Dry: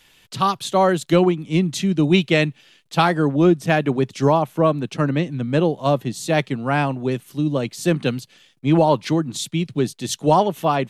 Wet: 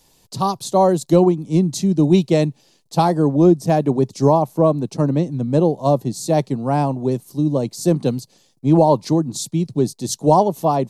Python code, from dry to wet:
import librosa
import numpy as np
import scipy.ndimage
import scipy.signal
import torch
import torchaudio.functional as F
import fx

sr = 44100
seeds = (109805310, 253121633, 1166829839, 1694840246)

y = fx.band_shelf(x, sr, hz=2100.0, db=-15.0, octaves=1.7)
y = y * 10.0 ** (2.5 / 20.0)